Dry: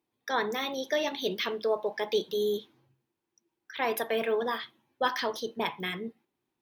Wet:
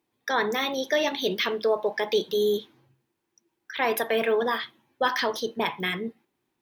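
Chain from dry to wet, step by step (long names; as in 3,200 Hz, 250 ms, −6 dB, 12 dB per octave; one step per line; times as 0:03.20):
parametric band 1,800 Hz +2 dB
in parallel at −2 dB: brickwall limiter −21 dBFS, peak gain reduction 8 dB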